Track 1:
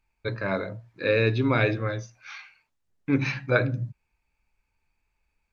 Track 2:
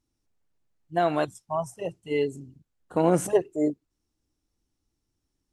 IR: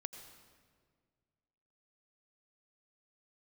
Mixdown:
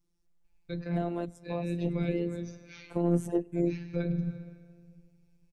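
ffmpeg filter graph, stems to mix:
-filter_complex "[0:a]equalizer=frequency=1200:width_type=o:width=1.3:gain=-12.5,adelay=450,volume=-2dB,asplit=2[link_01][link_02];[link_02]volume=-3.5dB[link_03];[1:a]acontrast=68,aeval=exprs='val(0)*sin(2*PI*40*n/s)':channel_layout=same,volume=-4dB,asplit=3[link_04][link_05][link_06];[link_05]volume=-20dB[link_07];[link_06]apad=whole_len=263360[link_08];[link_01][link_08]sidechaincompress=threshold=-29dB:ratio=8:attack=16:release=609[link_09];[2:a]atrim=start_sample=2205[link_10];[link_03][link_07]amix=inputs=2:normalize=0[link_11];[link_11][link_10]afir=irnorm=-1:irlink=0[link_12];[link_09][link_04][link_12]amix=inputs=3:normalize=0,afftfilt=real='hypot(re,im)*cos(PI*b)':imag='0':win_size=1024:overlap=0.75,acrossover=split=420[link_13][link_14];[link_14]acompressor=threshold=-46dB:ratio=2.5[link_15];[link_13][link_15]amix=inputs=2:normalize=0,lowshelf=frequency=120:gain=10"

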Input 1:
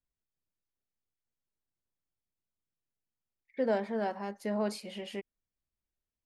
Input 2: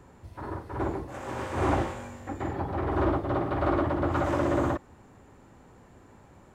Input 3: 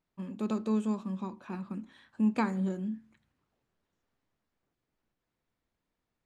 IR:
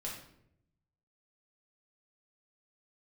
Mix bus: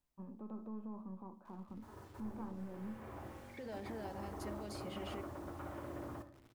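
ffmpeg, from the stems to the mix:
-filter_complex "[0:a]volume=3dB[link_01];[1:a]acompressor=threshold=-29dB:ratio=3,lowpass=frequency=3400:width=0.5412,lowpass=frequency=3400:width=1.3066,acrusher=bits=7:mix=0:aa=0.000001,adelay=1450,volume=-18dB,asplit=2[link_02][link_03];[link_03]volume=-4.5dB[link_04];[2:a]aeval=exprs='if(lt(val(0),0),0.708*val(0),val(0))':channel_layout=same,lowpass=frequency=920:width_type=q:width=2,volume=-10dB,asplit=3[link_05][link_06][link_07];[link_06]volume=-16dB[link_08];[link_07]apad=whole_len=352555[link_09];[link_02][link_09]sidechaincompress=threshold=-54dB:ratio=8:attack=41:release=550[link_10];[link_01][link_05]amix=inputs=2:normalize=0,acrossover=split=870|2000[link_11][link_12][link_13];[link_11]acompressor=threshold=-39dB:ratio=4[link_14];[link_12]acompressor=threshold=-58dB:ratio=4[link_15];[link_13]acompressor=threshold=-53dB:ratio=4[link_16];[link_14][link_15][link_16]amix=inputs=3:normalize=0,alimiter=level_in=15.5dB:limit=-24dB:level=0:latency=1:release=43,volume=-15.5dB,volume=0dB[link_17];[3:a]atrim=start_sample=2205[link_18];[link_04][link_08]amix=inputs=2:normalize=0[link_19];[link_19][link_18]afir=irnorm=-1:irlink=0[link_20];[link_10][link_17][link_20]amix=inputs=3:normalize=0"

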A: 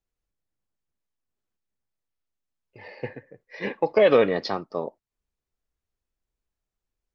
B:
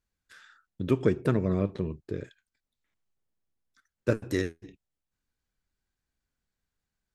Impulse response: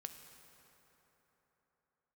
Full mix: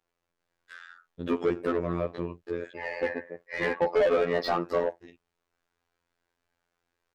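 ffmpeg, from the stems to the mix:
-filter_complex "[0:a]acompressor=threshold=-23dB:ratio=12,volume=3dB,asplit=2[link_01][link_02];[1:a]equalizer=frequency=150:width_type=o:width=1.4:gain=-6,adelay=400,volume=-1dB[link_03];[link_02]apad=whole_len=332870[link_04];[link_03][link_04]sidechaincompress=threshold=-33dB:ratio=8:attack=10:release=308[link_05];[link_01][link_05]amix=inputs=2:normalize=0,afftfilt=real='hypot(re,im)*cos(PI*b)':imag='0':win_size=2048:overlap=0.75,asplit=2[link_06][link_07];[link_07]highpass=frequency=720:poles=1,volume=21dB,asoftclip=type=tanh:threshold=-14.5dB[link_08];[link_06][link_08]amix=inputs=2:normalize=0,lowpass=frequency=1400:poles=1,volume=-6dB"

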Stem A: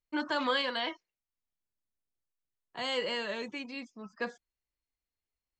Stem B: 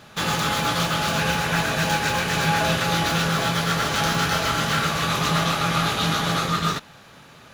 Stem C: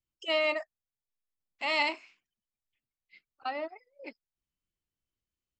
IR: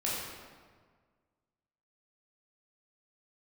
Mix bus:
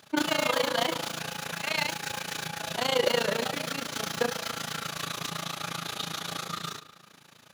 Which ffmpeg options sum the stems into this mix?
-filter_complex "[0:a]equalizer=frequency=540:width=0.47:gain=10,volume=0dB,asplit=2[link_01][link_02];[link_02]volume=-12dB[link_03];[1:a]highpass=120,alimiter=limit=-16dB:level=0:latency=1:release=421,volume=-8.5dB,asplit=2[link_04][link_05];[link_05]volume=-16dB[link_06];[2:a]volume=-1.5dB,asplit=2[link_07][link_08];[link_08]apad=whole_len=246668[link_09];[link_01][link_09]sidechaincompress=threshold=-38dB:ratio=8:attack=16:release=351[link_10];[3:a]atrim=start_sample=2205[link_11];[link_03][link_06]amix=inputs=2:normalize=0[link_12];[link_12][link_11]afir=irnorm=-1:irlink=0[link_13];[link_10][link_04][link_07][link_13]amix=inputs=4:normalize=0,highshelf=frequency=3200:gain=9.5,tremolo=f=28:d=0.889"

